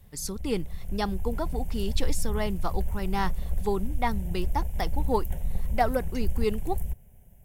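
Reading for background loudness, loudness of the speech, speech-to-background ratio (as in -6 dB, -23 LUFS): -35.5 LUFS, -32.0 LUFS, 3.5 dB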